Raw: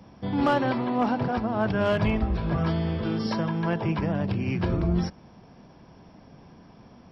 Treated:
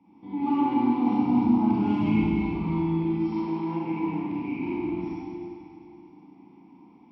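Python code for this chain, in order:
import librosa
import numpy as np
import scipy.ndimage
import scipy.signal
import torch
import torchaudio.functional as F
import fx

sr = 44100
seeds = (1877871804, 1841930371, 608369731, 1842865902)

y = fx.vowel_filter(x, sr, vowel='u')
y = fx.bass_treble(y, sr, bass_db=12, treble_db=12, at=(0.75, 2.49))
y = fx.rev_schroeder(y, sr, rt60_s=2.5, comb_ms=33, drr_db=-9.0)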